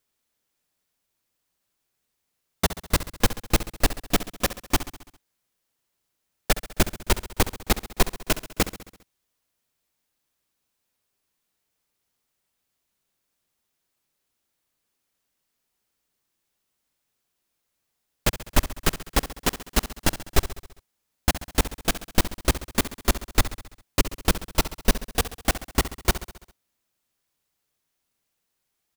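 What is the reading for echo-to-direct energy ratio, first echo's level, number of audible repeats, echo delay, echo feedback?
-11.5 dB, -13.5 dB, 5, 67 ms, 59%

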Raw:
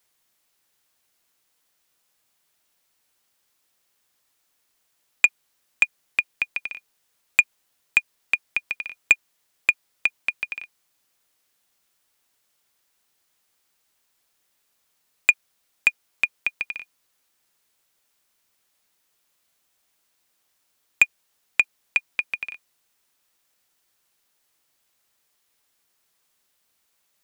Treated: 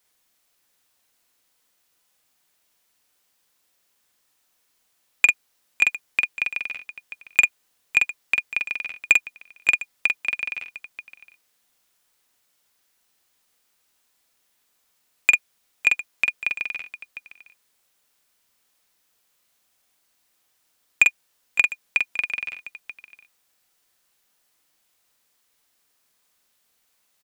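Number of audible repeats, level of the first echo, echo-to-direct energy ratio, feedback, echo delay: 3, -3.0 dB, -2.5 dB, no steady repeat, 45 ms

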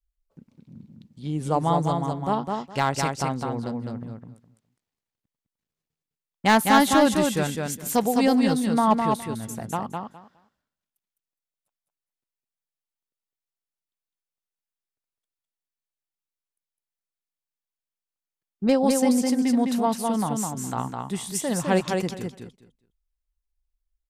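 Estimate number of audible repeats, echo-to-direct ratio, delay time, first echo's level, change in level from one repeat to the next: 3, -4.0 dB, 0.207 s, -4.0 dB, -15.0 dB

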